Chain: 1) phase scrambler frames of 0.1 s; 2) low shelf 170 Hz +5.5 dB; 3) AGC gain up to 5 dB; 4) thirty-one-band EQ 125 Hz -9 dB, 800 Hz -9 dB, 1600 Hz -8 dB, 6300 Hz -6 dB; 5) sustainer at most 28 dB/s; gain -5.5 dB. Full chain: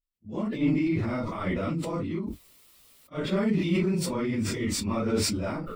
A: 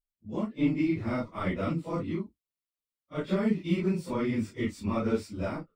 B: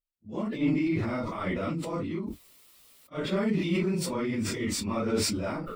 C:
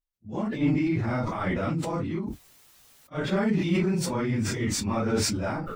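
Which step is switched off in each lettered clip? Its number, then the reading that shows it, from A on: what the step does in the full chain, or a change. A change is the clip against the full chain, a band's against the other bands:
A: 5, crest factor change +2.5 dB; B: 2, 125 Hz band -2.0 dB; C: 4, 1 kHz band +2.5 dB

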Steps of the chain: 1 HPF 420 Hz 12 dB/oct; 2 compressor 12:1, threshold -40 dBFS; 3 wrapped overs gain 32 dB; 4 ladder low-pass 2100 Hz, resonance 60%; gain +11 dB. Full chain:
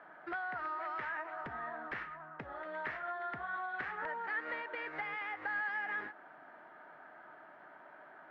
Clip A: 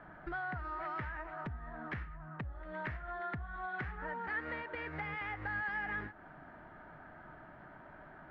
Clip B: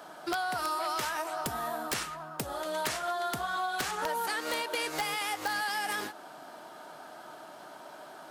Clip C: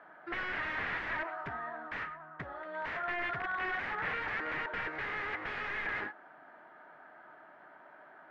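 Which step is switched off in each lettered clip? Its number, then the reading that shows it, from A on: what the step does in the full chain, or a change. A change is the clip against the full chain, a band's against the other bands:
1, 125 Hz band +16.0 dB; 4, 4 kHz band +11.5 dB; 2, mean gain reduction 5.0 dB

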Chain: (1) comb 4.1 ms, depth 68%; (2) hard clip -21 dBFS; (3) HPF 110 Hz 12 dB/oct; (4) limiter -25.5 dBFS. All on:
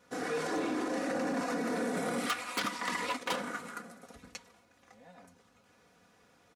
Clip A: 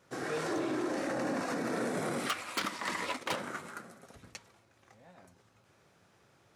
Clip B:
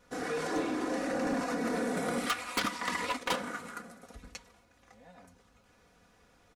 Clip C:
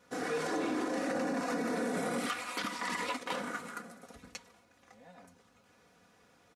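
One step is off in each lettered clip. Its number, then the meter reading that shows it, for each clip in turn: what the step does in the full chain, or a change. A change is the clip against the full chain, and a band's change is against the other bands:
1, 125 Hz band +3.0 dB; 3, loudness change +1.0 LU; 2, distortion -6 dB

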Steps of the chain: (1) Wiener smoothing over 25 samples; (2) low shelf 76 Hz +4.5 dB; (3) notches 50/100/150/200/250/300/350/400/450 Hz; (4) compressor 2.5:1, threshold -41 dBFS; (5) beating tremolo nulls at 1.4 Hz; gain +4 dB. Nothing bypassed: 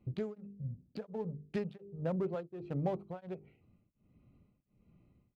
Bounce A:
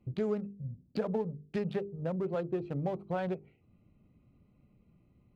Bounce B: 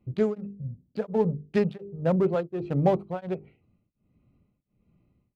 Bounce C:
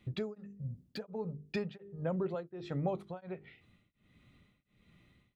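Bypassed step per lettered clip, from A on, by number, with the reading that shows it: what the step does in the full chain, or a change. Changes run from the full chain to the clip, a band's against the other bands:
5, momentary loudness spread change -4 LU; 4, mean gain reduction 11.0 dB; 1, 2 kHz band +5.0 dB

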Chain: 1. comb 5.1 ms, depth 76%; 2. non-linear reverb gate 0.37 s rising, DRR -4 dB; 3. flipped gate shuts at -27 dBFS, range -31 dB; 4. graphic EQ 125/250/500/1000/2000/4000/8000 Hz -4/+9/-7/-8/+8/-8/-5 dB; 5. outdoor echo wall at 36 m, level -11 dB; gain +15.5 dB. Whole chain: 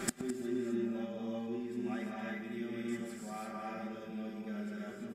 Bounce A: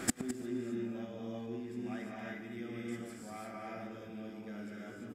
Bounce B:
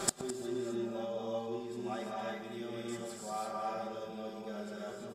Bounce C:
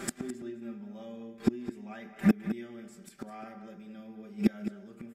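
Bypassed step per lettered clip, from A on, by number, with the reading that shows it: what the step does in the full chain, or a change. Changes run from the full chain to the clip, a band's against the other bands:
1, 8 kHz band +4.5 dB; 4, crest factor change +3.0 dB; 2, momentary loudness spread change +12 LU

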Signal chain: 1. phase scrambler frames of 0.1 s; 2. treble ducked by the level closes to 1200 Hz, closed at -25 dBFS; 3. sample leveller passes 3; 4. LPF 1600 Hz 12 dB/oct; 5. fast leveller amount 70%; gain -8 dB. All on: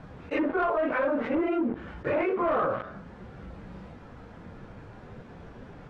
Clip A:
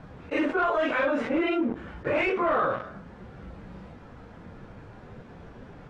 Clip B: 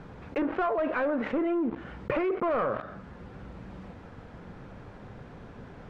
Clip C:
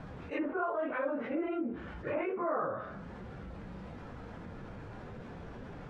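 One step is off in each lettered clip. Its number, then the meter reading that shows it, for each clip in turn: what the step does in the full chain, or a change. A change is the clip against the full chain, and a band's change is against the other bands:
2, 2 kHz band +4.0 dB; 1, crest factor change +1.5 dB; 3, crest factor change +4.5 dB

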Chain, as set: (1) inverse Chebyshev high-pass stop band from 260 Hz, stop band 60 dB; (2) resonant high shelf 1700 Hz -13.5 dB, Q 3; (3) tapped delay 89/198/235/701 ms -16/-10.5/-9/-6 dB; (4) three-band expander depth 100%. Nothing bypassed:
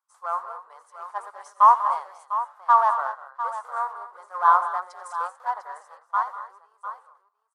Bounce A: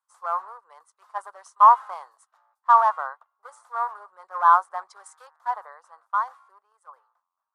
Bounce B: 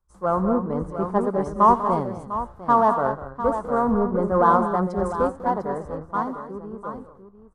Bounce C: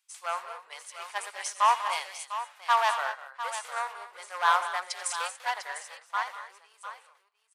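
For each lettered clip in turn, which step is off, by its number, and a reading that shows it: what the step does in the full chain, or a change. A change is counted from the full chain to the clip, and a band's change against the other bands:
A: 3, loudness change +2.0 LU; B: 1, crest factor change -3.0 dB; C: 2, loudness change -6.5 LU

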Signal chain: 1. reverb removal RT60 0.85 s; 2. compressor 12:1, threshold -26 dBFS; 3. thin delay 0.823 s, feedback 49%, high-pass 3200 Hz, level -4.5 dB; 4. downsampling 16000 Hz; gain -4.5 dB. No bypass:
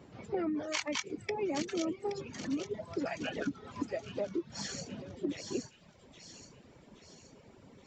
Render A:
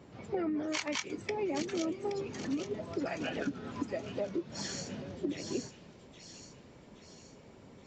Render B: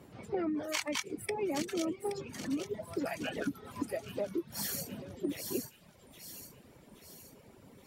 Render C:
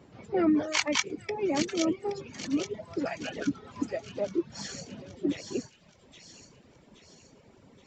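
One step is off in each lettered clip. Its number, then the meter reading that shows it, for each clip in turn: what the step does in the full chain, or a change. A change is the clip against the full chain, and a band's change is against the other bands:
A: 1, 125 Hz band +2.0 dB; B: 4, 8 kHz band +2.5 dB; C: 2, mean gain reduction 2.5 dB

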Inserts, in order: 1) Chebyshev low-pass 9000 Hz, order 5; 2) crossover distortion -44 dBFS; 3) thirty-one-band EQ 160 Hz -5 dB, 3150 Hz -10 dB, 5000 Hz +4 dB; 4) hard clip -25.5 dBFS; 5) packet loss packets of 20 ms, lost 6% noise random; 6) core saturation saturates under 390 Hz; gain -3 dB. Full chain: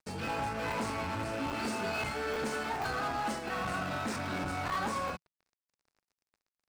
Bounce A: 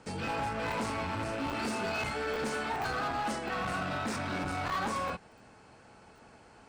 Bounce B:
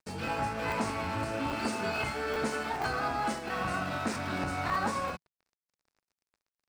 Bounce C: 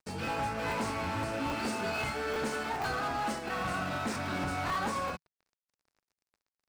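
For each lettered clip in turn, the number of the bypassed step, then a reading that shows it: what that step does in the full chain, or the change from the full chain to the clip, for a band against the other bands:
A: 2, distortion -20 dB; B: 4, distortion -12 dB; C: 6, loudness change +1.0 LU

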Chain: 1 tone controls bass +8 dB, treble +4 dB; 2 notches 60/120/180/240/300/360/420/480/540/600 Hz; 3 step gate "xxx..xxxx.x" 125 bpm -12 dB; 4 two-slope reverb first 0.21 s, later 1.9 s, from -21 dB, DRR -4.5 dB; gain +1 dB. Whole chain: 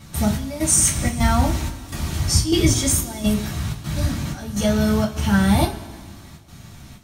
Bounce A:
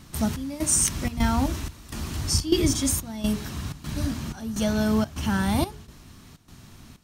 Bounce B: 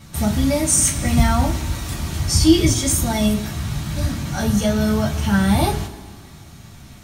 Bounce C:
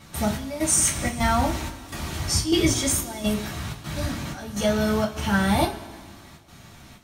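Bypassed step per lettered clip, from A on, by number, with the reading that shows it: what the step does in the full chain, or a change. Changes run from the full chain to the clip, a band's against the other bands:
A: 4, loudness change -5.5 LU; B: 3, loudness change +1.5 LU; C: 1, 125 Hz band -6.0 dB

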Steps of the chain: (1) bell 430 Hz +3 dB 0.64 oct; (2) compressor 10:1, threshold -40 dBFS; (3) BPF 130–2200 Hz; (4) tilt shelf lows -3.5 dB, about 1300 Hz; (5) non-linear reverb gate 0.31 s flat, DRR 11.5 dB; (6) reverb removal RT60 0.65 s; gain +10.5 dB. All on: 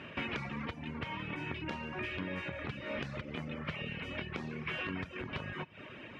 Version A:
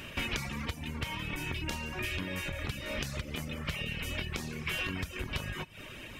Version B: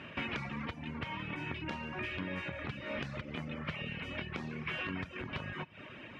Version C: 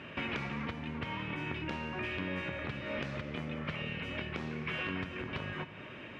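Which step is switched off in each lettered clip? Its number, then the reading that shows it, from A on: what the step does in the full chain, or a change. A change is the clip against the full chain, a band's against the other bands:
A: 3, 4 kHz band +6.5 dB; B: 1, 500 Hz band -1.5 dB; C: 6, loudness change +1.5 LU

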